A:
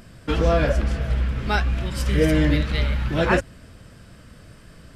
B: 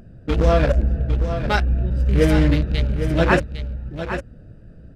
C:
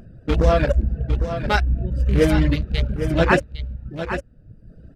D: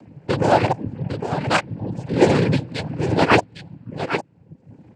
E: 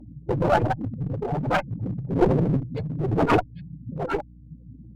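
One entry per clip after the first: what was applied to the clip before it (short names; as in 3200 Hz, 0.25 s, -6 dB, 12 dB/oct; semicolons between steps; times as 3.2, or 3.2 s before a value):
Wiener smoothing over 41 samples; bell 270 Hz -2 dB 1.8 oct; on a send: echo 0.805 s -9.5 dB; on the sum: gain +4 dB
reverb removal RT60 0.86 s; gain +1 dB
noise vocoder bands 8; gain +2.5 dB
spectral contrast raised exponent 2.9; one-sided clip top -27 dBFS; hum 60 Hz, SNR 23 dB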